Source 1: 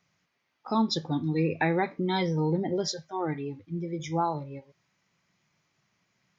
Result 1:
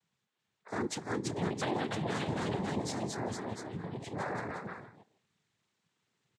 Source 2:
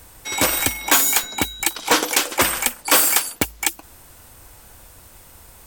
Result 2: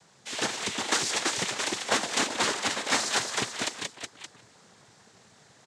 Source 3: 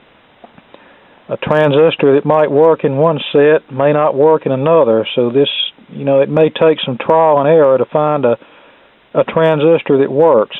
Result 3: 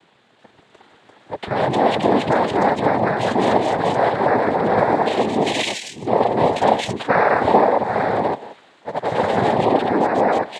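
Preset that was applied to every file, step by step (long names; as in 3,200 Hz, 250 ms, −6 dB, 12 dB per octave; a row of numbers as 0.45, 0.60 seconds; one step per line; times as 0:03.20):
far-end echo of a speakerphone 180 ms, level −14 dB
delay with pitch and tempo change per echo 385 ms, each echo +1 semitone, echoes 3
cochlear-implant simulation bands 6
level −9 dB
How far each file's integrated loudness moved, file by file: −7.0, −10.0, −6.5 LU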